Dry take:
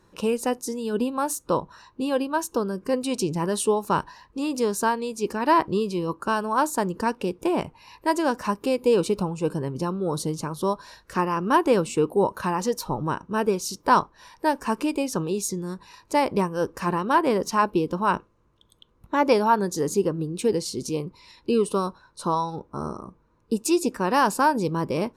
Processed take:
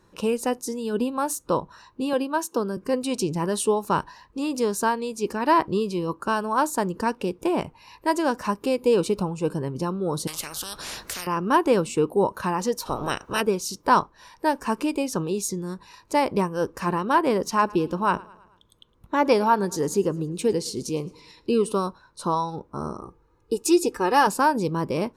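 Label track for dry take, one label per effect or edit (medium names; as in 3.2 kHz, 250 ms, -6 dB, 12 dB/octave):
2.130000	2.770000	high-pass 160 Hz 24 dB/octave
10.270000	11.270000	spectrum-flattening compressor 10:1
12.850000	13.400000	spectral peaks clipped ceiling under each frame's peak by 24 dB
17.480000	21.720000	feedback delay 109 ms, feedback 54%, level -23 dB
23.020000	24.270000	comb 2.4 ms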